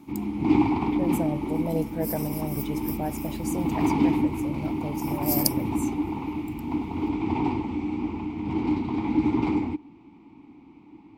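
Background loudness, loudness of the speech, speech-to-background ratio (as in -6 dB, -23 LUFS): -27.5 LUFS, -32.0 LUFS, -4.5 dB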